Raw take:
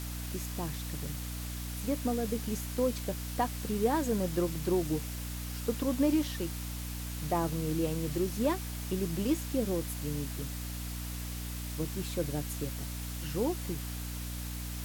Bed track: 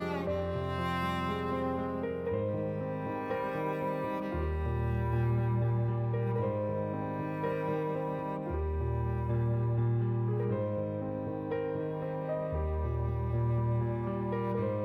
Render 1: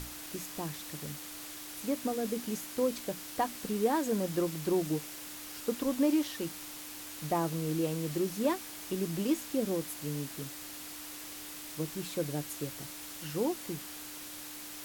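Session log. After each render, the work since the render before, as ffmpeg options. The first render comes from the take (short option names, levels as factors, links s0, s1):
-af "bandreject=f=60:t=h:w=6,bandreject=f=120:t=h:w=6,bandreject=f=180:t=h:w=6,bandreject=f=240:t=h:w=6"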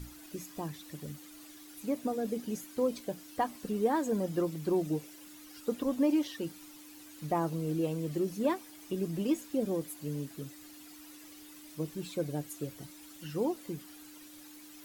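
-af "afftdn=nr=12:nf=-45"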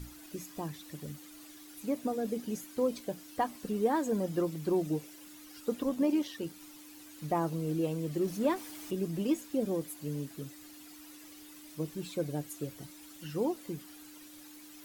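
-filter_complex "[0:a]asettb=1/sr,asplit=3[s0][s1][s2];[s0]atrim=end=5.894[s3];[s1]atrim=start=5.89:end=6.6,asetpts=PTS-STARTPTS,afade=t=in:d=0.004:c=qsin,afade=t=out:st=0.706:d=0.004:c=qsin,tremolo=f=83:d=0.261[s4];[s2]atrim=start=6.596[s5];[s3][s4]acrossfade=d=0.004:c1=hsin:c2=qsin[s6];[s6][s5]acrossfade=d=0.004:c1=qsin:c2=hsin,asettb=1/sr,asplit=3[s7][s8][s9];[s7]atrim=end=8.214[s10];[s8]atrim=start=8.21:end=8.91,asetpts=PTS-STARTPTS,afade=t=in:d=0.004:c=qsin,afade=t=out:st=0.696:d=0.004:c=qsin,aeval=exprs='val(0)+0.5*0.00562*sgn(val(0))':c=same[s11];[s9]atrim=start=8.906[s12];[s10][s11]acrossfade=d=0.004:c1=hsin:c2=qsin[s13];[s13][s12]acrossfade=d=0.004:c1=qsin:c2=hsin"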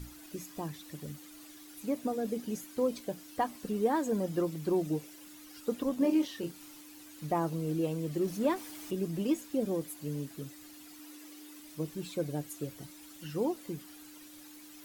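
-filter_complex "[0:a]asettb=1/sr,asplit=3[s0][s1][s2];[s0]atrim=end=5.984[s3];[s1]atrim=start=5.98:end=6.81,asetpts=PTS-STARTPTS,afade=t=in:d=0.004:c=qsin,afade=t=out:st=0.826:d=0.004:c=qsin,asplit=2[s4][s5];[s5]adelay=29,volume=0.501[s6];[s4][s6]amix=inputs=2:normalize=0,atrim=end_sample=36603[s7];[s2]atrim=start=6.806[s8];[s3][s7]acrossfade=d=0.004:c1=hsin:c2=qsin[s9];[s9][s8]acrossfade=d=0.004:c1=qsin:c2=hsin,asettb=1/sr,asplit=3[s10][s11][s12];[s10]atrim=end=10.994[s13];[s11]atrim=start=10.99:end=11.6,asetpts=PTS-STARTPTS,afade=t=in:d=0.004:c=qsin,afade=t=out:st=0.606:d=0.004:c=qsin,lowshelf=f=170:t=q:w=1.5:g=-12.5[s14];[s12]atrim=start=11.596[s15];[s13][s14]acrossfade=d=0.004:c1=hsin:c2=qsin[s16];[s16][s15]acrossfade=d=0.004:c1=qsin:c2=hsin"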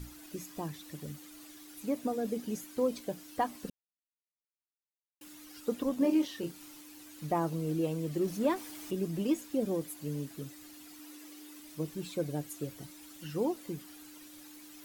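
-filter_complex "[0:a]asplit=3[s0][s1][s2];[s0]atrim=end=3.7,asetpts=PTS-STARTPTS,afade=t=out:st=3.696:d=0.004:c=hsin[s3];[s1]atrim=start=3.7:end=5.21,asetpts=PTS-STARTPTS,volume=0[s4];[s2]atrim=start=5.21,asetpts=PTS-STARTPTS,afade=t=in:d=0.004:c=hsin[s5];[s3][s4][s5]concat=n=3:v=0:a=1"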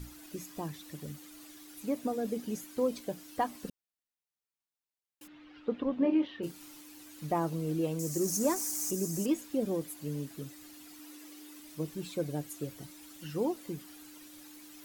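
-filter_complex "[0:a]asplit=3[s0][s1][s2];[s0]afade=t=out:st=5.26:d=0.02[s3];[s1]lowpass=f=3200:w=0.5412,lowpass=f=3200:w=1.3066,afade=t=in:st=5.26:d=0.02,afade=t=out:st=6.42:d=0.02[s4];[s2]afade=t=in:st=6.42:d=0.02[s5];[s3][s4][s5]amix=inputs=3:normalize=0,asettb=1/sr,asplit=3[s6][s7][s8];[s6]atrim=end=7.994[s9];[s7]atrim=start=7.99:end=9.26,asetpts=PTS-STARTPTS,afade=t=in:d=0.004:c=qsin,afade=t=out:st=1.266:d=0.004:c=qsin,highshelf=f=4700:t=q:w=3:g=11.5[s10];[s8]atrim=start=9.256[s11];[s9][s10]acrossfade=d=0.004:c1=hsin:c2=qsin[s12];[s12][s11]acrossfade=d=0.004:c1=qsin:c2=hsin"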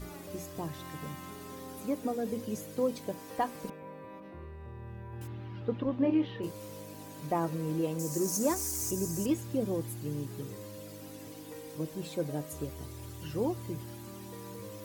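-filter_complex "[1:a]volume=0.224[s0];[0:a][s0]amix=inputs=2:normalize=0"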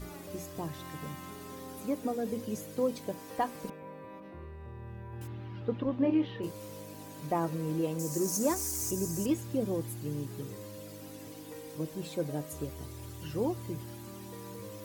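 -af anull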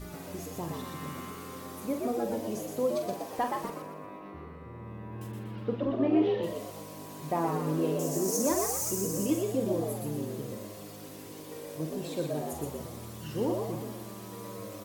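-filter_complex "[0:a]asplit=2[s0][s1];[s1]adelay=45,volume=0.422[s2];[s0][s2]amix=inputs=2:normalize=0,asplit=2[s3][s4];[s4]asplit=5[s5][s6][s7][s8][s9];[s5]adelay=121,afreqshift=98,volume=0.631[s10];[s6]adelay=242,afreqshift=196,volume=0.251[s11];[s7]adelay=363,afreqshift=294,volume=0.101[s12];[s8]adelay=484,afreqshift=392,volume=0.0403[s13];[s9]adelay=605,afreqshift=490,volume=0.0162[s14];[s10][s11][s12][s13][s14]amix=inputs=5:normalize=0[s15];[s3][s15]amix=inputs=2:normalize=0"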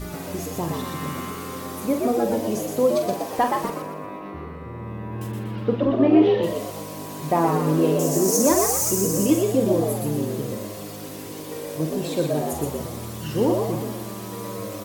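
-af "volume=2.99"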